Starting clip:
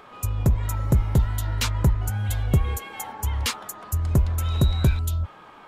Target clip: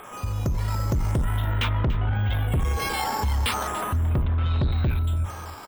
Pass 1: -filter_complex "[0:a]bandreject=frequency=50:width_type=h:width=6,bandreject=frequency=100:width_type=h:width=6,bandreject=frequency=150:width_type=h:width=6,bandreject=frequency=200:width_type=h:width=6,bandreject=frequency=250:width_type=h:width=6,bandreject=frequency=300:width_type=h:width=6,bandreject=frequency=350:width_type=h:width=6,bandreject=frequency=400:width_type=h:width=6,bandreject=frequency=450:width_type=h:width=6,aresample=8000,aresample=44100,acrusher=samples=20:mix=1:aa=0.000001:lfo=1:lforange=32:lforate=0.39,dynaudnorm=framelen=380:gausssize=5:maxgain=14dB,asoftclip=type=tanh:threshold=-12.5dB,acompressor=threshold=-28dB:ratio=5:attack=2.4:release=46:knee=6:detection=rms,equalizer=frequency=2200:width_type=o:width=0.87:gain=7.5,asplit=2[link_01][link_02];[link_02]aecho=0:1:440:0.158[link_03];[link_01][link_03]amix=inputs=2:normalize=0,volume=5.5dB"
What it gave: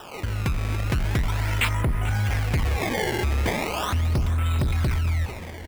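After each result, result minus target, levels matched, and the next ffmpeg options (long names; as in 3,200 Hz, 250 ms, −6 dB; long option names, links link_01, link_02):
echo 152 ms late; sample-and-hold swept by an LFO: distortion +9 dB; 2,000 Hz band +3.5 dB
-filter_complex "[0:a]bandreject=frequency=50:width_type=h:width=6,bandreject=frequency=100:width_type=h:width=6,bandreject=frequency=150:width_type=h:width=6,bandreject=frequency=200:width_type=h:width=6,bandreject=frequency=250:width_type=h:width=6,bandreject=frequency=300:width_type=h:width=6,bandreject=frequency=350:width_type=h:width=6,bandreject=frequency=400:width_type=h:width=6,bandreject=frequency=450:width_type=h:width=6,aresample=8000,aresample=44100,acrusher=samples=20:mix=1:aa=0.000001:lfo=1:lforange=32:lforate=0.39,dynaudnorm=framelen=380:gausssize=5:maxgain=14dB,asoftclip=type=tanh:threshold=-12.5dB,acompressor=threshold=-28dB:ratio=5:attack=2.4:release=46:knee=6:detection=rms,equalizer=frequency=2200:width_type=o:width=0.87:gain=7.5,asplit=2[link_01][link_02];[link_02]aecho=0:1:288:0.158[link_03];[link_01][link_03]amix=inputs=2:normalize=0,volume=5.5dB"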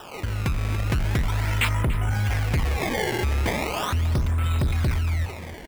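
sample-and-hold swept by an LFO: distortion +9 dB; 2,000 Hz band +3.5 dB
-filter_complex "[0:a]bandreject=frequency=50:width_type=h:width=6,bandreject=frequency=100:width_type=h:width=6,bandreject=frequency=150:width_type=h:width=6,bandreject=frequency=200:width_type=h:width=6,bandreject=frequency=250:width_type=h:width=6,bandreject=frequency=300:width_type=h:width=6,bandreject=frequency=350:width_type=h:width=6,bandreject=frequency=400:width_type=h:width=6,bandreject=frequency=450:width_type=h:width=6,aresample=8000,aresample=44100,acrusher=samples=4:mix=1:aa=0.000001:lfo=1:lforange=6.4:lforate=0.39,dynaudnorm=framelen=380:gausssize=5:maxgain=14dB,asoftclip=type=tanh:threshold=-12.5dB,acompressor=threshold=-28dB:ratio=5:attack=2.4:release=46:knee=6:detection=rms,equalizer=frequency=2200:width_type=o:width=0.87:gain=7.5,asplit=2[link_01][link_02];[link_02]aecho=0:1:288:0.158[link_03];[link_01][link_03]amix=inputs=2:normalize=0,volume=5.5dB"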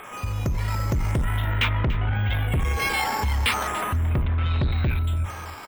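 2,000 Hz band +5.0 dB
-filter_complex "[0:a]bandreject=frequency=50:width_type=h:width=6,bandreject=frequency=100:width_type=h:width=6,bandreject=frequency=150:width_type=h:width=6,bandreject=frequency=200:width_type=h:width=6,bandreject=frequency=250:width_type=h:width=6,bandreject=frequency=300:width_type=h:width=6,bandreject=frequency=350:width_type=h:width=6,bandreject=frequency=400:width_type=h:width=6,bandreject=frequency=450:width_type=h:width=6,aresample=8000,aresample=44100,acrusher=samples=4:mix=1:aa=0.000001:lfo=1:lforange=6.4:lforate=0.39,dynaudnorm=framelen=380:gausssize=5:maxgain=14dB,asoftclip=type=tanh:threshold=-12.5dB,acompressor=threshold=-28dB:ratio=5:attack=2.4:release=46:knee=6:detection=rms,asplit=2[link_01][link_02];[link_02]aecho=0:1:288:0.158[link_03];[link_01][link_03]amix=inputs=2:normalize=0,volume=5.5dB"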